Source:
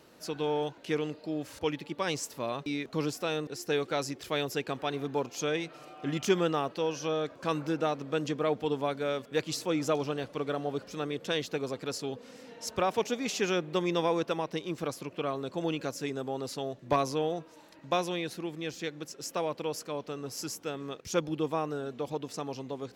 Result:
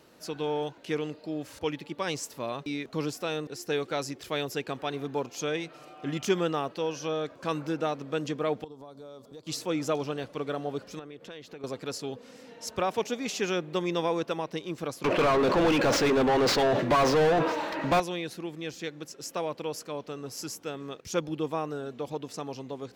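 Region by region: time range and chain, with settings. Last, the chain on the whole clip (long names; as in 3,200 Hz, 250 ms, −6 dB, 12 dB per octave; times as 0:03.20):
0:08.64–0:09.47: flat-topped bell 2,100 Hz −14 dB 1.2 octaves + downward compressor 5 to 1, threshold −44 dBFS
0:10.99–0:11.64: downward compressor 4 to 1, threshold −41 dBFS + bass and treble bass −2 dB, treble −7 dB
0:15.04–0:18.00: running median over 5 samples + mid-hump overdrive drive 35 dB, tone 1,700 Hz, clips at −15 dBFS + level that may fall only so fast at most 44 dB per second
whole clip: no processing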